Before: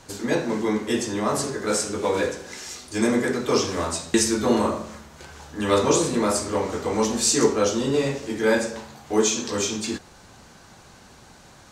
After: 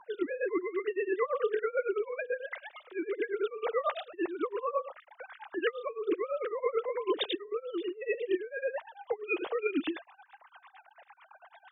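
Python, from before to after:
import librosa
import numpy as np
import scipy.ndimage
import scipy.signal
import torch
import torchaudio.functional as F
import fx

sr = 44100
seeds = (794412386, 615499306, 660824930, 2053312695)

y = fx.sine_speech(x, sr)
y = fx.over_compress(y, sr, threshold_db=-30.0, ratio=-1.0)
y = y * (1.0 - 0.9 / 2.0 + 0.9 / 2.0 * np.cos(2.0 * np.pi * 9.0 * (np.arange(len(y)) / sr)))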